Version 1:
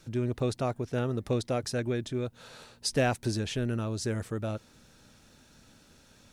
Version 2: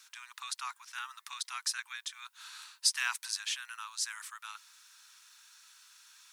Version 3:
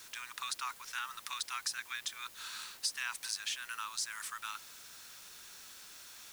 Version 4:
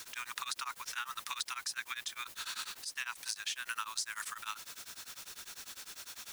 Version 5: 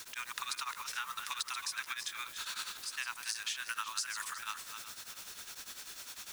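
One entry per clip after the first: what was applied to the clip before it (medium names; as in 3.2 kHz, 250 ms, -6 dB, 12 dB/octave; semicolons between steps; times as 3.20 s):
steep high-pass 960 Hz 72 dB/octave; treble shelf 3.8 kHz +6.5 dB
compression 4:1, threshold -39 dBFS, peak gain reduction 14 dB; word length cut 10-bit, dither triangular; trim +4 dB
compression 6:1, threshold -39 dBFS, peak gain reduction 9.5 dB; tremolo of two beating tones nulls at 10 Hz; trim +7 dB
backward echo that repeats 185 ms, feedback 47%, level -8 dB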